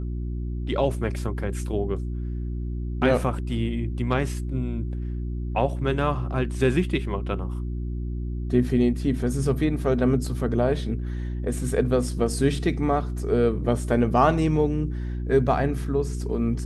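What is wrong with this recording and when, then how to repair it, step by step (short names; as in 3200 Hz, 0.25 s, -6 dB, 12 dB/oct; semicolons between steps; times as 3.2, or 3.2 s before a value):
hum 60 Hz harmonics 6 -29 dBFS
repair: de-hum 60 Hz, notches 6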